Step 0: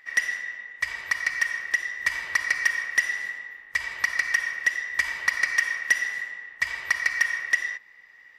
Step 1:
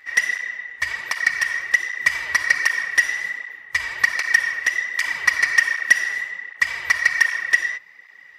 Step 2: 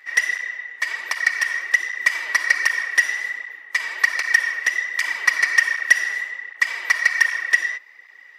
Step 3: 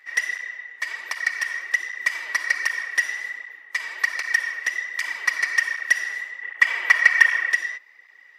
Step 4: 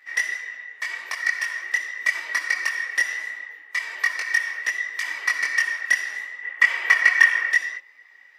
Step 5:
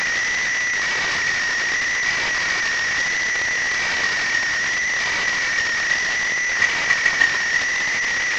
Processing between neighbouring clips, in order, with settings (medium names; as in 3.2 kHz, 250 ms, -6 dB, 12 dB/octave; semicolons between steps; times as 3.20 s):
cancelling through-zero flanger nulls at 1.3 Hz, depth 6.1 ms; trim +8.5 dB
high-pass 280 Hz 24 dB/octave
time-frequency box 6.43–7.52 s, 270–3500 Hz +7 dB; trim -4.5 dB
chorus voices 4, 0.4 Hz, delay 22 ms, depth 3.8 ms; trim +3 dB
one-bit delta coder 32 kbps, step -13 dBFS; trim -2 dB